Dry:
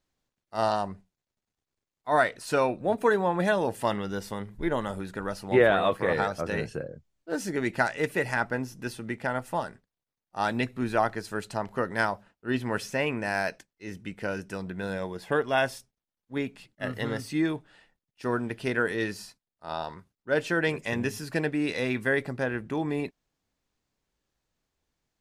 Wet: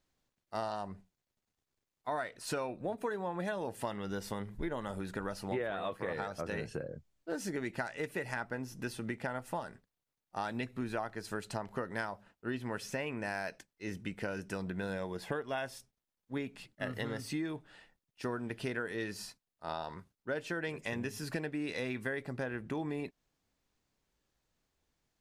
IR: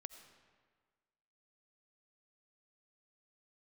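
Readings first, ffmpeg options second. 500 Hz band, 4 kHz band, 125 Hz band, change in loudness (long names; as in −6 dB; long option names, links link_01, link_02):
−10.5 dB, −8.0 dB, −7.5 dB, −10.0 dB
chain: -af "acompressor=threshold=-34dB:ratio=6"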